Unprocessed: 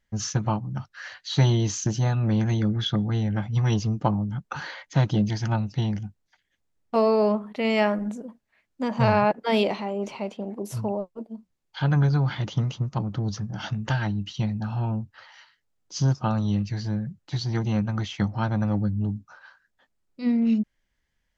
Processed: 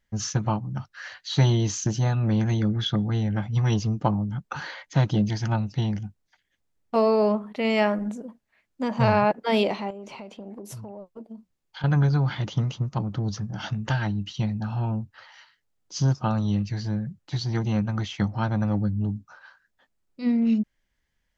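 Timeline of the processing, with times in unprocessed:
9.90–11.84 s: compression 10:1, threshold -35 dBFS

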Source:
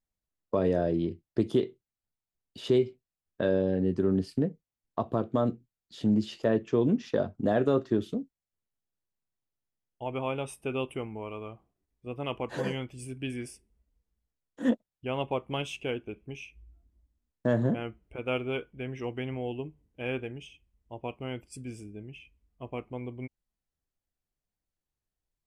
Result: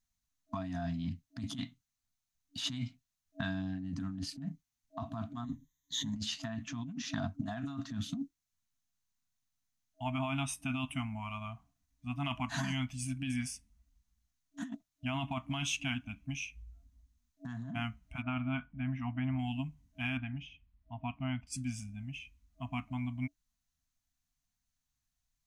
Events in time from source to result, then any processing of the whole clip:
5.44–6.16 s: rippled EQ curve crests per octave 1.1, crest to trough 17 dB
18.22–19.39 s: low-pass 1.6 kHz
20.17–21.47 s: distance through air 320 m
whole clip: FFT band-reject 290–640 Hz; graphic EQ with 31 bands 200 Hz -4 dB, 315 Hz +4 dB, 800 Hz -7 dB, 4 kHz +4 dB, 6.3 kHz +9 dB; compressor with a negative ratio -36 dBFS, ratio -1

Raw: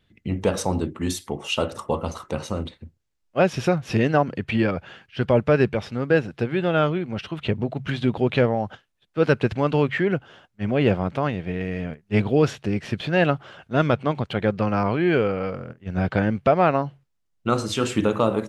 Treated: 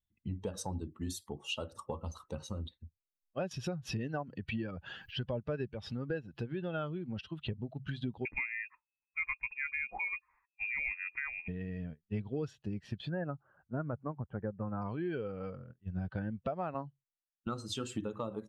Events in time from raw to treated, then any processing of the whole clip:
3.51–7.21 s: upward compressor, threshold -20 dBFS
8.25–11.48 s: frequency inversion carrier 2.6 kHz
13.09–14.82 s: low-pass 1.7 kHz 24 dB/octave
16.74–17.47 s: three bands expanded up and down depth 100%
whole clip: expander on every frequency bin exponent 1.5; bass shelf 110 Hz +5.5 dB; compression 4:1, threshold -31 dBFS; trim -4.5 dB

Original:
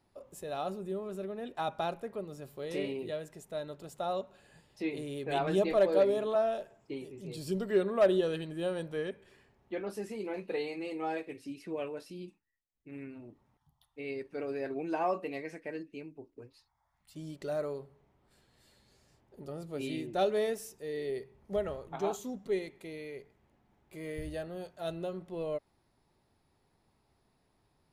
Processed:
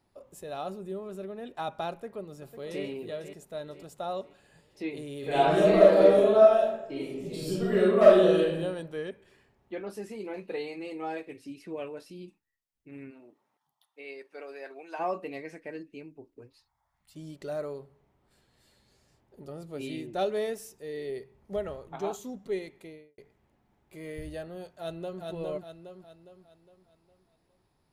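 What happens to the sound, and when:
1.91–2.83 s: echo throw 500 ms, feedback 45%, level -10.5 dB
5.19–8.52 s: reverb throw, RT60 0.93 s, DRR -6.5 dB
13.10–14.98 s: high-pass 320 Hz -> 760 Hz
22.78–23.18 s: studio fade out
24.66–25.22 s: echo throw 410 ms, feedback 45%, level -2.5 dB

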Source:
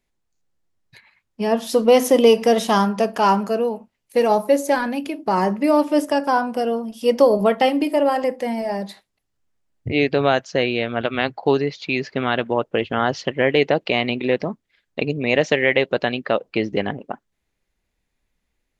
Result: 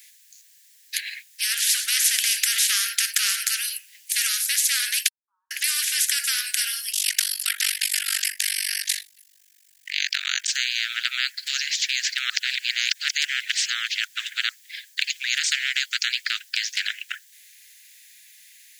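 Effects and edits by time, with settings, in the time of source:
5.08–5.51 s: steep low-pass 940 Hz 96 dB/octave
6.92–10.49 s: AM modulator 48 Hz, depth 100%
12.30–14.49 s: reverse
whole clip: steep high-pass 1.6 kHz 96 dB/octave; tilt EQ +4.5 dB/octave; spectrum-flattening compressor 4:1; trim -3 dB

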